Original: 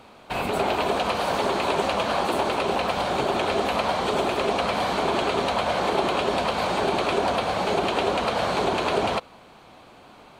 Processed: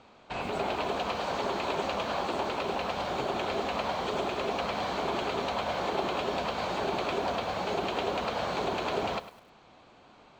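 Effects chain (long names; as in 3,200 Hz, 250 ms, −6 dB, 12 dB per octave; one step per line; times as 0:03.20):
Butterworth low-pass 7,700 Hz 48 dB per octave
feedback echo at a low word length 102 ms, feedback 35%, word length 7 bits, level −13.5 dB
level −7.5 dB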